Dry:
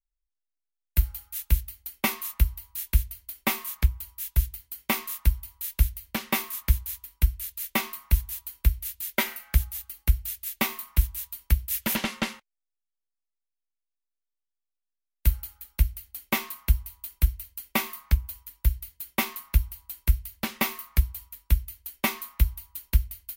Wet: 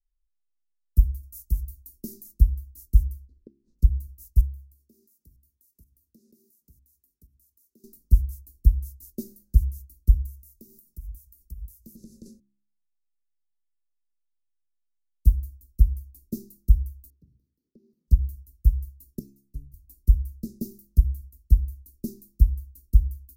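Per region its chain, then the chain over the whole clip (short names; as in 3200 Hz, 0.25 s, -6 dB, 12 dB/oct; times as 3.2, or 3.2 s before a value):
1.23–2.24 high shelf 3600 Hz +7.5 dB + compressor 2:1, threshold -25 dBFS
3.27–3.79 Bessel low-pass 2200 Hz, order 4 + flipped gate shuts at -30 dBFS, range -28 dB
4.41–7.84 HPF 210 Hz + tremolo saw up 2.1 Hz, depth 85% + compressor 8:1, threshold -46 dBFS
10.26–12.26 high shelf 5700 Hz +8 dB + notches 50/100/150 Hz + compressor 12:1, threshold -35 dBFS
17.1–18.08 HPF 150 Hz 24 dB/oct + compressor 16:1, threshold -42 dBFS + air absorption 300 m
19.19–19.74 high shelf 11000 Hz -6 dB + metallic resonator 140 Hz, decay 0.3 s, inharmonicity 0.002
whole clip: inverse Chebyshev band-stop 710–3300 Hz, stop band 40 dB; tilt -2.5 dB/oct; de-hum 68.12 Hz, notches 5; gain -5 dB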